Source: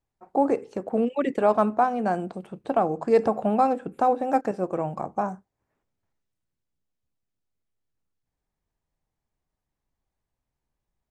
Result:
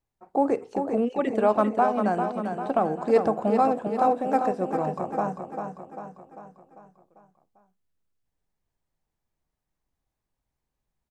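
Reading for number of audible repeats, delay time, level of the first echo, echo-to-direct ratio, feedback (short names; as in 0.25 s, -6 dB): 6, 0.396 s, -6.5 dB, -5.0 dB, 52%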